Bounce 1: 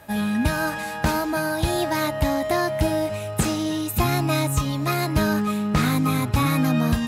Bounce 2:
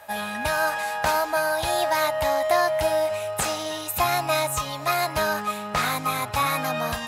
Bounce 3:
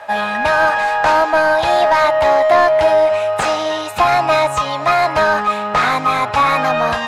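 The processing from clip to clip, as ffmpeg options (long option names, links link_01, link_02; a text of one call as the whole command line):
ffmpeg -i in.wav -af "lowshelf=frequency=440:width_type=q:width=1.5:gain=-13,volume=1dB" out.wav
ffmpeg -i in.wav -filter_complex "[0:a]lowpass=8300,asplit=2[link_01][link_02];[link_02]highpass=frequency=720:poles=1,volume=14dB,asoftclip=type=tanh:threshold=-9dB[link_03];[link_01][link_03]amix=inputs=2:normalize=0,lowpass=frequency=1300:poles=1,volume=-6dB,volume=7.5dB" out.wav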